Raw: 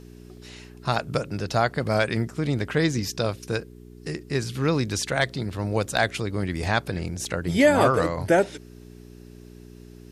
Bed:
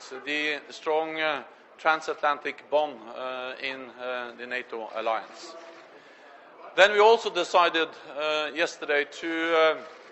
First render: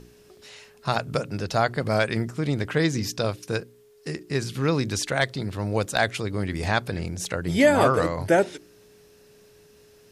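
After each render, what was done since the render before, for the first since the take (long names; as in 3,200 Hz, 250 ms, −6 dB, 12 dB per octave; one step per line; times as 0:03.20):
hum removal 60 Hz, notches 6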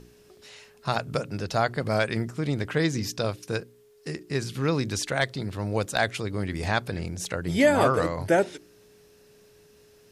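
level −2 dB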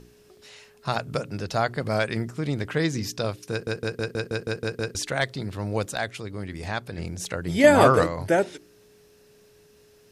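0:03.51: stutter in place 0.16 s, 9 plays
0:05.95–0:06.98: clip gain −4.5 dB
0:07.64–0:08.04: clip gain +5 dB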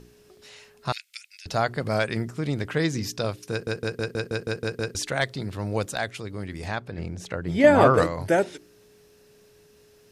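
0:00.92–0:01.46: elliptic high-pass filter 2,100 Hz, stop band 70 dB
0:06.75–0:07.98: low-pass filter 2,300 Hz 6 dB per octave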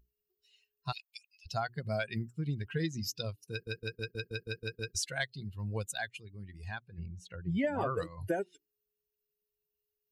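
spectral dynamics exaggerated over time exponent 2
downward compressor 10 to 1, threshold −29 dBFS, peak gain reduction 17.5 dB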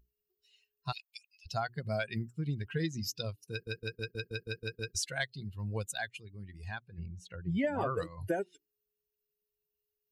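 no processing that can be heard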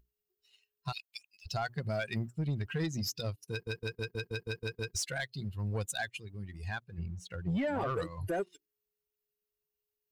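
brickwall limiter −26.5 dBFS, peak gain reduction 7 dB
leveller curve on the samples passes 1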